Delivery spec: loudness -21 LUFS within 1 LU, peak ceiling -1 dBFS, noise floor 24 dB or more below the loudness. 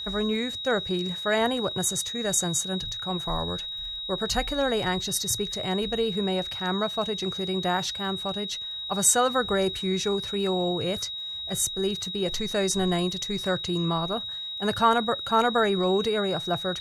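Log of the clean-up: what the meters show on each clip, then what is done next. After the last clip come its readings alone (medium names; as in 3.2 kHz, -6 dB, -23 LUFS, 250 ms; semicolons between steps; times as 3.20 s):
tick rate 26 per s; steady tone 3.8 kHz; tone level -32 dBFS; loudness -26.0 LUFS; peak level -9.0 dBFS; loudness target -21.0 LUFS
-> de-click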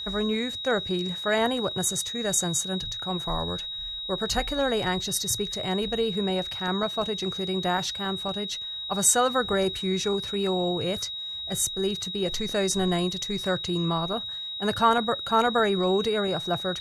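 tick rate 0 per s; steady tone 3.8 kHz; tone level -32 dBFS
-> band-stop 3.8 kHz, Q 30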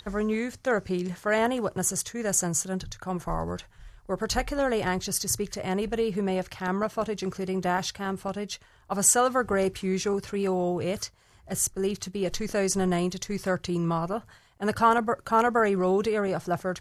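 steady tone not found; loudness -27.5 LUFS; peak level -8.5 dBFS; loudness target -21.0 LUFS
-> trim +6.5 dB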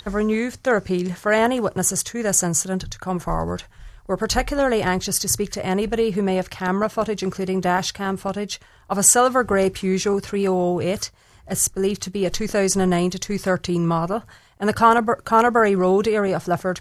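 loudness -21.0 LUFS; peak level -2.0 dBFS; noise floor -51 dBFS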